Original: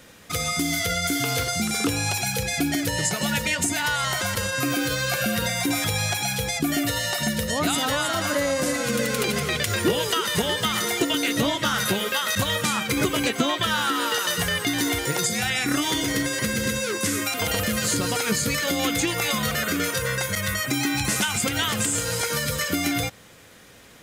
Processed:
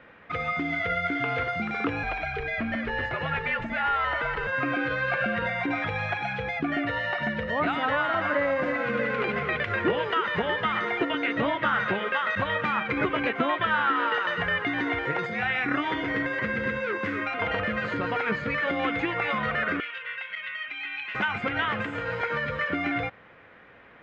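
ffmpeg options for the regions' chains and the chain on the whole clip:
-filter_complex "[0:a]asettb=1/sr,asplit=3[a][b][c];[a]atrim=end=2.034[d];[b]atrim=start=2.03:end=4.47,asetpts=PTS-STARTPTS,afade=t=in:d=0.004:c=qsin,afade=t=out:st=2.436:d=0.004:c=qsin,afreqshift=-58,acrossover=split=5300[e][f];[f]acompressor=threshold=-34dB:ratio=4:attack=1:release=60[g];[e][g]amix=inputs=2:normalize=0,asoftclip=type=hard:threshold=-20.5dB[h];[c]atrim=start=4.466[i];[d][h]acrossfade=d=0.004:c1=hsin:c2=qsin[j];[j][i]acrossfade=d=0.004:c1=qsin:c2=hsin,asettb=1/sr,asplit=3[k][l][m];[k]atrim=end=19.804[n];[l]atrim=start=19.8:end=21.15,asetpts=PTS-STARTPTS,afade=t=in:d=0.004:c=qsin,afade=t=out:st=1.346:d=0.004:c=qsin,acontrast=33,bandpass=f=2.9k:t=q:w=3.8[o];[m]atrim=start=21.146[p];[n][o]acrossfade=d=0.004:c1=hsin:c2=qsin[q];[q][p]acrossfade=d=0.004:c1=qsin:c2=hsin,lowpass=f=2.2k:w=0.5412,lowpass=f=2.2k:w=1.3066,lowshelf=f=410:g=-10.5,volume=2.5dB"

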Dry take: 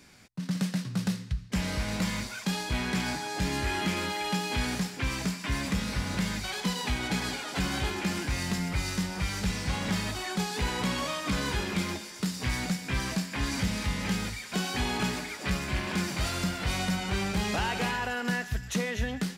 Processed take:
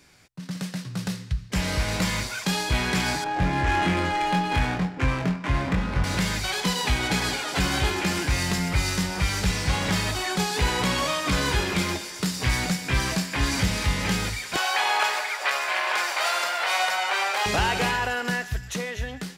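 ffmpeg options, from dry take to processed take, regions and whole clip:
-filter_complex "[0:a]asettb=1/sr,asplit=3[a][b][c];[a]atrim=end=3.244[d];[b]atrim=start=3.24:end=6.04,asetpts=PTS-STARTPTS,afade=t=in:d=0.004:c=qsin,afade=t=out:st=2.796:d=0.004:c=qsin,adynamicsmooth=sensitivity=3.5:basefreq=880,asplit=2[e][f];[f]adelay=23,volume=-3.5dB[g];[e][g]amix=inputs=2:normalize=0,atrim=end_sample=123480[h];[c]atrim=start=6.036[i];[d][h]acrossfade=d=0.004:c1=hsin:c2=qsin[j];[j][i]acrossfade=d=0.004:c1=qsin:c2=hsin,asettb=1/sr,asplit=3[k][l][m];[k]atrim=end=14.564[n];[l]atrim=start=14.56:end=17.46,asetpts=PTS-STARTPTS,afade=t=in:d=0.004:c=qsin,afade=t=out:st=2.896:d=0.004:c=qsin,highpass=f=640:w=0.5412,highpass=f=640:w=1.3066,equalizer=f=9.2k:t=o:w=2.9:g=-9.5,acontrast=67[o];[m]atrim=start=17.456[p];[n][o]acrossfade=d=0.004:c1=hsin:c2=qsin[q];[q][p]acrossfade=d=0.004:c1=qsin:c2=hsin,equalizer=f=220:t=o:w=0.34:g=-10.5,dynaudnorm=f=150:g=17:m=7dB"

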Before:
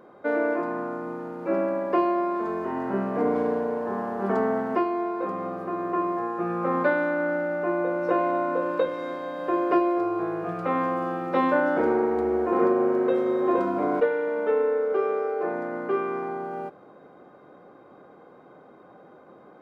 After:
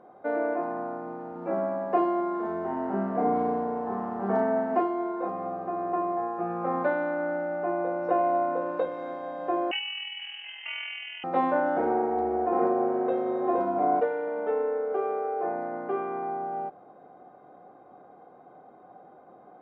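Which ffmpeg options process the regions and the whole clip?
-filter_complex "[0:a]asettb=1/sr,asplit=3[a][b][c];[a]atrim=end=1.324[d];[b]atrim=start=1.32:end=5.28,asetpts=PTS-STARTPTS,afade=t=in:d=0.004:c=qsin,afade=t=out:st=3.956:d=0.004:c=qsin,highpass=54,asplit=2[e][f];[f]adelay=35,volume=-3dB[g];[e][g]amix=inputs=2:normalize=0,atrim=end_sample=174636[h];[c]atrim=start=5.276[i];[d][h]acrossfade=d=0.004:c1=hsin:c2=qsin[j];[j][i]acrossfade=d=0.004:c1=qsin:c2=hsin,asettb=1/sr,asplit=3[k][l][m];[k]atrim=end=9.714[n];[l]atrim=start=9.71:end=11.24,asetpts=PTS-STARTPTS,afade=t=in:d=0.004:c=qsin,afade=t=out:st=1.526:d=0.004:c=qsin,tremolo=f=41:d=0.462,lowpass=f=2.8k:t=q:w=0.5098,lowpass=f=2.8k:t=q:w=0.6013,lowpass=f=2.8k:t=q:w=0.9,lowpass=f=2.8k:t=q:w=2.563,afreqshift=-3300[o];[m]atrim=start=11.236[p];[n][o]acrossfade=d=0.004:c1=hsin:c2=qsin[q];[q][p]acrossfade=d=0.004:c1=qsin:c2=hsin,lowpass=f=2k:p=1,equalizer=f=740:t=o:w=0.28:g=13.5,volume=-5dB"

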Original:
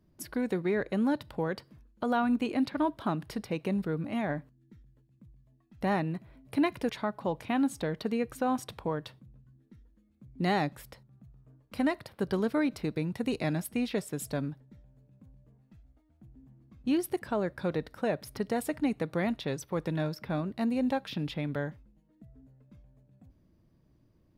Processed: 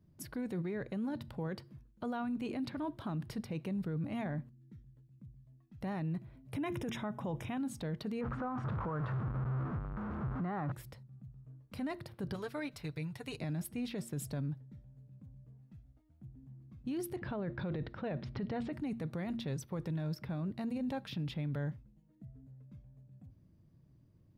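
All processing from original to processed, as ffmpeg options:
-filter_complex "[0:a]asettb=1/sr,asplit=3[a][b][c];[a]atrim=end=6.554[d];[b]atrim=start=6.55:end=7.58,asetpts=PTS-STARTPTS,afade=t=in:d=0.004:c=qsin,afade=t=out:st=1.026:d=0.004:c=qsin,equalizer=f=6.5k:w=6.2:g=3,acontrast=27,asuperstop=centerf=4400:order=12:qfactor=3.8[e];[c]atrim=start=7.576[f];[d][e]acrossfade=d=0.004:c1=hsin:c2=qsin[g];[g][f]acrossfade=d=0.004:c1=qsin:c2=hsin,asettb=1/sr,asplit=3[h][i][j];[h]atrim=end=8.214[k];[i]atrim=start=8.21:end=10.72,asetpts=PTS-STARTPTS,afade=t=in:d=0.004:c=qsin,afade=t=out:st=2.506:d=0.004:c=qsin,aeval=exprs='val(0)+0.5*0.0224*sgn(val(0))':c=same,lowpass=f=1.3k:t=q:w=3.6[l];[j]atrim=start=10.716[m];[k][l]acrossfade=d=0.004:c1=hsin:c2=qsin[n];[n][m]acrossfade=d=0.004:c1=qsin:c2=hsin,asettb=1/sr,asplit=3[o][p][q];[o]atrim=end=12.344[r];[p]atrim=start=12.34:end=13.38,asetpts=PTS-STARTPTS,afade=t=in:d=0.004:c=qsin,afade=t=out:st=1.036:d=0.004:c=qsin,equalizer=f=240:w=0.63:g=-14.5,aecho=1:1:6.9:0.52,atrim=end_sample=45864[s];[q]atrim=start=13.376[t];[r][s]acrossfade=d=0.004:c1=hsin:c2=qsin[u];[u][t]acrossfade=d=0.004:c1=qsin:c2=hsin,asettb=1/sr,asplit=3[v][w][x];[v]atrim=end=17.164[y];[w]atrim=start=17.16:end=18.73,asetpts=PTS-STARTPTS,afade=t=in:d=0.004:c=qsin,afade=t=out:st=1.566:d=0.004:c=qsin,lowpass=f=3.9k:w=0.5412,lowpass=f=3.9k:w=1.3066,acontrast=47[z];[x]atrim=start=18.726[aa];[y][z]acrossfade=d=0.004:c1=hsin:c2=qsin[ab];[ab][aa]acrossfade=d=0.004:c1=qsin:c2=hsin,equalizer=f=120:t=o:w=1.4:g=11.5,bandreject=f=115.5:t=h:w=4,bandreject=f=231:t=h:w=4,bandreject=f=346.5:t=h:w=4,alimiter=level_in=1.5dB:limit=-24dB:level=0:latency=1:release=11,volume=-1.5dB,volume=-5.5dB"

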